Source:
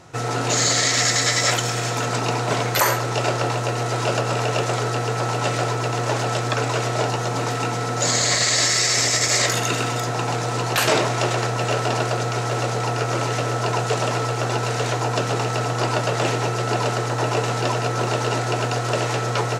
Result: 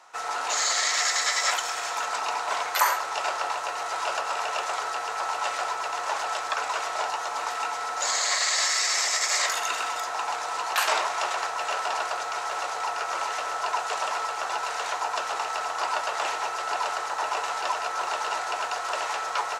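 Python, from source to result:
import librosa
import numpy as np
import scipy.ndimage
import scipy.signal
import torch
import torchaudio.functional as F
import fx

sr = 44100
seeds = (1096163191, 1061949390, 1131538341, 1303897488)

y = fx.highpass_res(x, sr, hz=940.0, q=1.9)
y = F.gain(torch.from_numpy(y), -6.0).numpy()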